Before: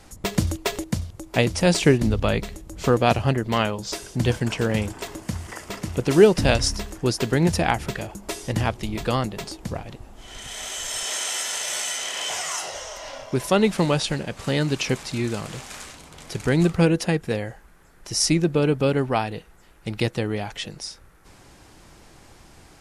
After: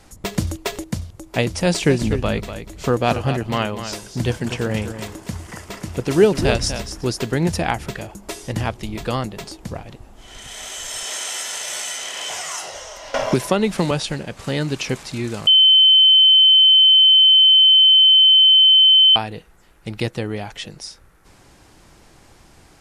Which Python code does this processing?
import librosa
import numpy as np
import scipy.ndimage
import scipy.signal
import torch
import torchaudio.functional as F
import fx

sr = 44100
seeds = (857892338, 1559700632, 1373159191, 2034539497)

y = fx.echo_single(x, sr, ms=244, db=-10.0, at=(1.88, 7.23), fade=0.02)
y = fx.band_squash(y, sr, depth_pct=100, at=(13.14, 13.91))
y = fx.edit(y, sr, fx.bleep(start_s=15.47, length_s=3.69, hz=3070.0, db=-8.0), tone=tone)